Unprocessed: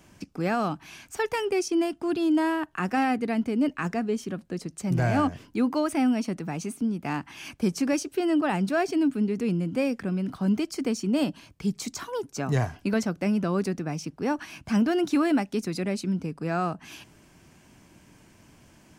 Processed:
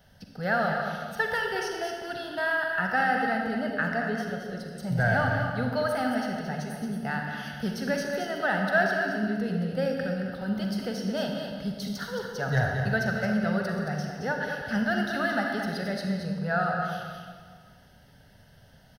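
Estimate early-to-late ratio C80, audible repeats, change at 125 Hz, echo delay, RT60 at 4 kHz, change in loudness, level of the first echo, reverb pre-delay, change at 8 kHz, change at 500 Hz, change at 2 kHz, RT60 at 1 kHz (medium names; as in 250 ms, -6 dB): 2.0 dB, 1, 0.0 dB, 222 ms, 1.3 s, -1.5 dB, -7.5 dB, 38 ms, -7.5 dB, -0.5 dB, +8.0 dB, 1.7 s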